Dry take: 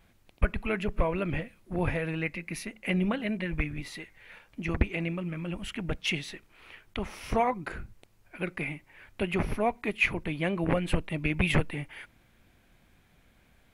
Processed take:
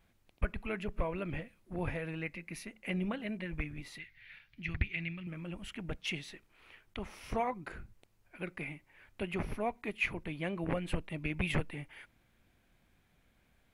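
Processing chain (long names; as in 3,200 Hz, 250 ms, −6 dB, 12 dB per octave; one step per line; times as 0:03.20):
0:03.98–0:05.27: octave-band graphic EQ 125/250/500/1,000/2,000/4,000/8,000 Hz +6/−6/−12/−9/+7/+7/−12 dB
level −7.5 dB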